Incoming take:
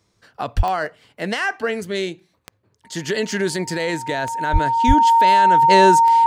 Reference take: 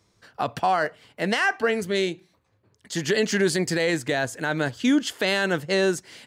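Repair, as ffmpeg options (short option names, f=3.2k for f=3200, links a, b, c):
-filter_complex "[0:a]adeclick=t=4,bandreject=f=920:w=30,asplit=3[a][b][c];[a]afade=t=out:st=0.56:d=0.02[d];[b]highpass=f=140:w=0.5412,highpass=f=140:w=1.3066,afade=t=in:st=0.56:d=0.02,afade=t=out:st=0.68:d=0.02[e];[c]afade=t=in:st=0.68:d=0.02[f];[d][e][f]amix=inputs=3:normalize=0,asplit=3[g][h][i];[g]afade=t=out:st=4.52:d=0.02[j];[h]highpass=f=140:w=0.5412,highpass=f=140:w=1.3066,afade=t=in:st=4.52:d=0.02,afade=t=out:st=4.64:d=0.02[k];[i]afade=t=in:st=4.64:d=0.02[l];[j][k][l]amix=inputs=3:normalize=0,asplit=3[m][n][o];[m]afade=t=out:st=4.87:d=0.02[p];[n]highpass=f=140:w=0.5412,highpass=f=140:w=1.3066,afade=t=in:st=4.87:d=0.02,afade=t=out:st=4.99:d=0.02[q];[o]afade=t=in:st=4.99:d=0.02[r];[p][q][r]amix=inputs=3:normalize=0,asetnsamples=n=441:p=0,asendcmd='5.62 volume volume -6.5dB',volume=0dB"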